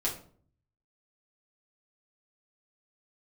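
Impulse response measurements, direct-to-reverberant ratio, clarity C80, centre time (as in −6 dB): −5.0 dB, 13.5 dB, 23 ms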